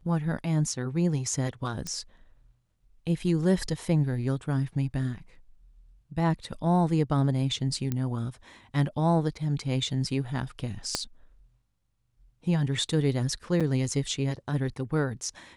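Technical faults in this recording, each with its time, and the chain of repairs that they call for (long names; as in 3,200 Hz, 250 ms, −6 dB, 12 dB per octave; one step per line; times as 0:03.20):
0:01.87: click −20 dBFS
0:07.92: click −16 dBFS
0:10.95: click −11 dBFS
0:13.60–0:13.61: drop-out 6.1 ms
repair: click removal
repair the gap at 0:13.60, 6.1 ms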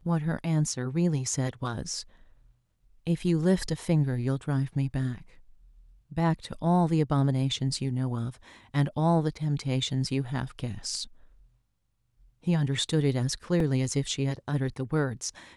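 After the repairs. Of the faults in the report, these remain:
0:10.95: click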